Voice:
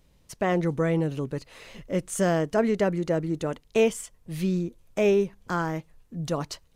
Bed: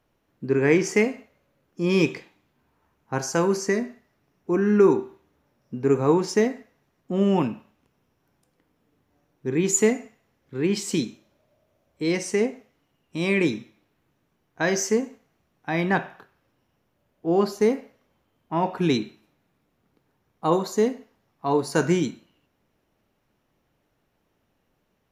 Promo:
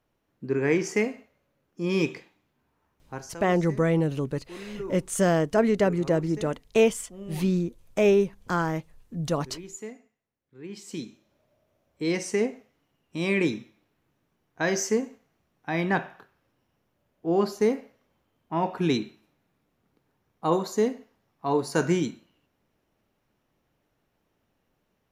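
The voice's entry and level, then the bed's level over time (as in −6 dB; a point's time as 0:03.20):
3.00 s, +1.5 dB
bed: 0:03.00 −4.5 dB
0:03.42 −19.5 dB
0:10.55 −19.5 dB
0:11.37 −2.5 dB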